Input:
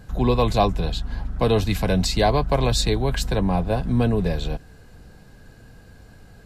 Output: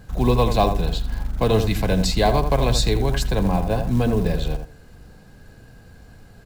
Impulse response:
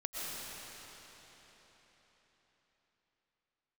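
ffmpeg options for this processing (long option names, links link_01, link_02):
-filter_complex "[0:a]asplit=2[link_01][link_02];[link_02]adelay=81,lowpass=frequency=1600:poles=1,volume=-7dB,asplit=2[link_03][link_04];[link_04]adelay=81,lowpass=frequency=1600:poles=1,volume=0.21,asplit=2[link_05][link_06];[link_06]adelay=81,lowpass=frequency=1600:poles=1,volume=0.21[link_07];[link_01][link_03][link_05][link_07]amix=inputs=4:normalize=0,acrusher=bits=7:mode=log:mix=0:aa=0.000001"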